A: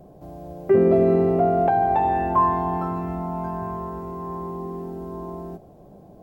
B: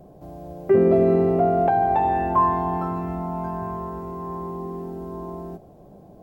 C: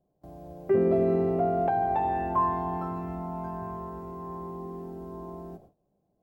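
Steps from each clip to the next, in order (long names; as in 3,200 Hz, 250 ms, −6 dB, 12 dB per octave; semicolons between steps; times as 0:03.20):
no processing that can be heard
noise gate with hold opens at −34 dBFS; level −6.5 dB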